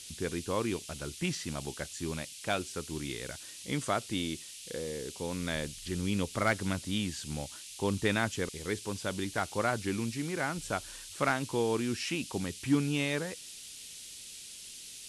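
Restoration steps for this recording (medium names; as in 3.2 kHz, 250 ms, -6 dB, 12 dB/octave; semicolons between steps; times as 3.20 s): clip repair -18 dBFS; noise print and reduce 30 dB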